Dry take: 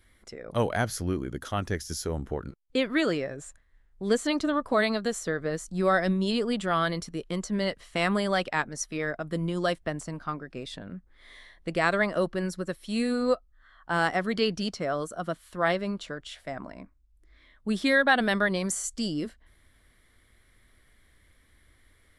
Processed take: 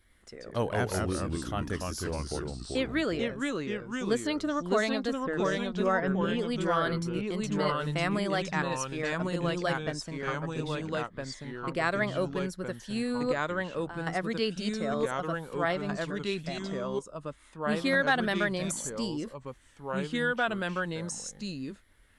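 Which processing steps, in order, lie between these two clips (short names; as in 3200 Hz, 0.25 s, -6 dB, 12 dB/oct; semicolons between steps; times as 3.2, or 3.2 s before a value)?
5.13–6.39 polynomial smoothing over 25 samples; 13.32–14.07 compressor 4:1, threshold -39 dBFS, peak gain reduction 16 dB; echoes that change speed 0.102 s, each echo -2 st, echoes 2; gain -4 dB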